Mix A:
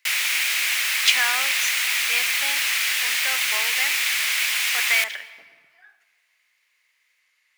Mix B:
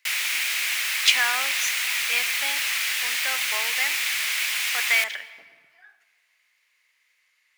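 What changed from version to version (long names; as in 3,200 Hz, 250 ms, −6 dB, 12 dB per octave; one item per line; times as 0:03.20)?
background −3.0 dB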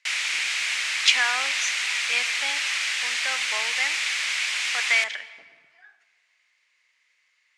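master: add low-pass filter 8,000 Hz 24 dB per octave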